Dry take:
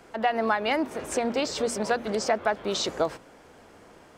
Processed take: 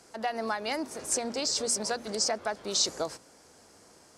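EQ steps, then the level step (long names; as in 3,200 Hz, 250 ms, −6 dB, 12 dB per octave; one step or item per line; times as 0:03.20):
high-pass filter 46 Hz
flat-topped bell 7,100 Hz +14 dB
−7.0 dB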